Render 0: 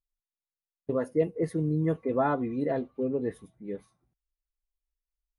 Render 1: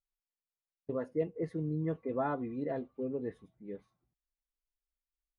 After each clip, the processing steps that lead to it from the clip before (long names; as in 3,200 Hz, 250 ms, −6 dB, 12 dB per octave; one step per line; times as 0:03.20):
Bessel low-pass filter 4,200 Hz, order 2
level −7 dB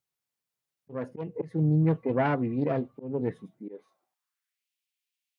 phase distortion by the signal itself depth 0.23 ms
volume swells 207 ms
high-pass filter sweep 120 Hz → 2,600 Hz, 0:03.26–0:04.67
level +7 dB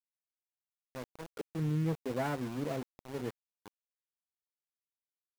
centre clipping without the shift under −31.5 dBFS
level −8.5 dB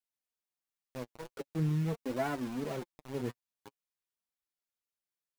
in parallel at −6 dB: floating-point word with a short mantissa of 2 bits
on the sum: flanger 0.44 Hz, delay 2.6 ms, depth 6.2 ms, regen +24%